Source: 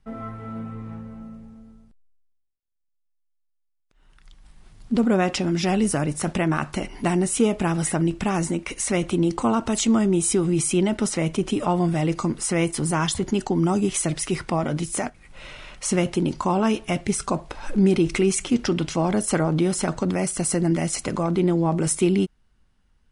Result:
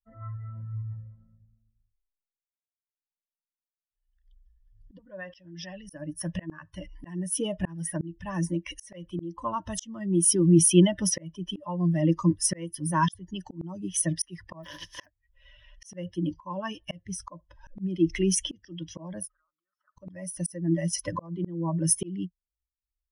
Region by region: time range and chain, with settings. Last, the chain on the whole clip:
0:04.98–0:05.90: low-pass filter 5,500 Hz + parametric band 250 Hz −5 dB 2.5 octaves + downward compressor 4 to 1, threshold −24 dBFS
0:14.63–0:15.04: compressing power law on the bin magnitudes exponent 0.24 + high-frequency loss of the air 79 metres + hollow resonant body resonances 390/1,000 Hz, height 7 dB, ringing for 90 ms
0:19.27–0:19.98: downward compressor 10 to 1, threshold −25 dBFS + resonant band-pass 1,300 Hz, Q 8.1
whole clip: spectral dynamics exaggerated over time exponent 2; EQ curve with evenly spaced ripples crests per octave 1.2, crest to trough 18 dB; volume swells 783 ms; level +4 dB

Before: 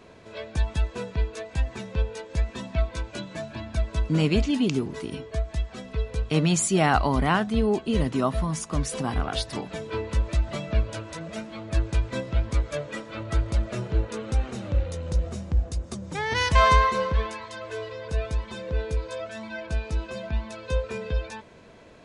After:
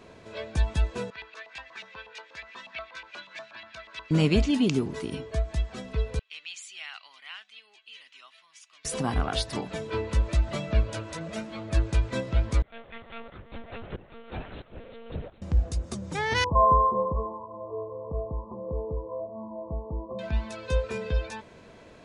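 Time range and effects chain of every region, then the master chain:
0:01.10–0:04.11: auto-filter band-pass saw up 8.3 Hz 970–2,600 Hz + parametric band 4,500 Hz +11 dB 1.9 octaves
0:06.19–0:08.85: four-pole ladder band-pass 3,200 Hz, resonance 40% + one half of a high-frequency compander decoder only
0:12.62–0:15.42: low-shelf EQ 330 Hz −11.5 dB + shaped tremolo saw up 1.5 Hz, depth 90% + one-pitch LPC vocoder at 8 kHz 230 Hz
0:16.44–0:20.19: linear-phase brick-wall low-pass 1,200 Hz + low-shelf EQ 68 Hz −11.5 dB
whole clip: no processing

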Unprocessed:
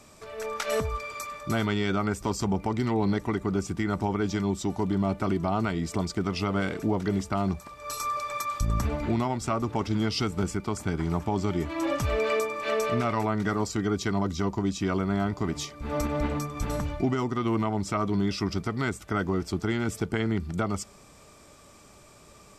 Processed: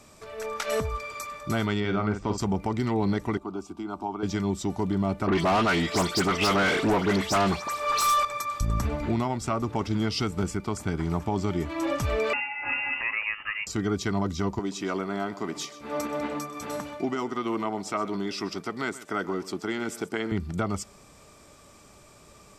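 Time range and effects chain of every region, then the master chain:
0:01.80–0:02.38: high-frequency loss of the air 160 metres + double-tracking delay 47 ms −7.5 dB
0:03.37–0:04.23: bass and treble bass −10 dB, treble −12 dB + phaser with its sweep stopped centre 500 Hz, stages 6
0:05.27–0:08.25: all-pass dispersion highs, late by 112 ms, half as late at 3,000 Hz + mid-hump overdrive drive 22 dB, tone 7,800 Hz, clips at −15.5 dBFS
0:12.33–0:13.67: high-pass filter 500 Hz 24 dB per octave + voice inversion scrambler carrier 3,200 Hz
0:14.59–0:20.32: high-pass filter 270 Hz + single-tap delay 128 ms −16.5 dB
whole clip: no processing

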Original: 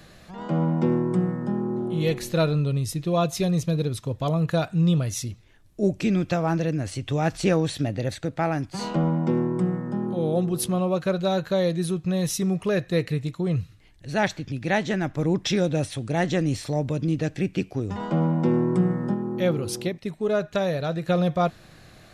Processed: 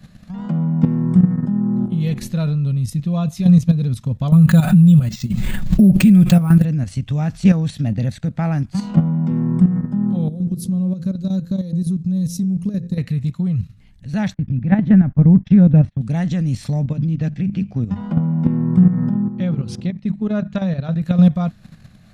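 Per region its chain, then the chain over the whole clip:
0:04.32–0:06.65: comb filter 5.4 ms, depth 68% + bad sample-rate conversion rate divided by 4×, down filtered, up hold + background raised ahead of every attack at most 31 dB per second
0:10.28–0:12.98: flat-topped bell 1,500 Hz −12.5 dB 2.6 octaves + hum removal 57.54 Hz, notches 9 + downward compressor 4 to 1, threshold −27 dBFS
0:14.34–0:16.01: low-pass filter 1,800 Hz + low-shelf EQ 220 Hz +7 dB + noise gate −35 dBFS, range −26 dB
0:16.85–0:21.02: high-frequency loss of the air 91 metres + mains-hum notches 50/100/150/200 Hz
whole clip: low shelf with overshoot 270 Hz +8 dB, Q 3; output level in coarse steps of 10 dB; level +2 dB

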